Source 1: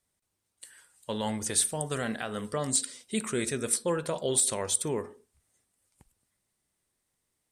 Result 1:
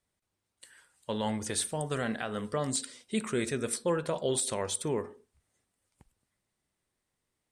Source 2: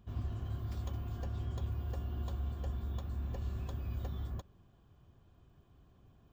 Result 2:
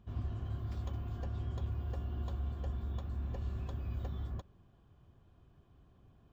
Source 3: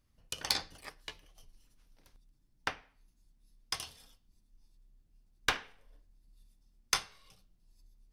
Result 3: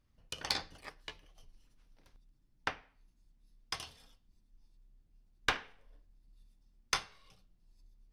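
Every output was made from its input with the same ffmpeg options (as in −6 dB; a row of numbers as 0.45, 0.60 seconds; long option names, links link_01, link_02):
-af "highshelf=frequency=6900:gain=-11"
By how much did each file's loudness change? −3.0, 0.0, −2.0 LU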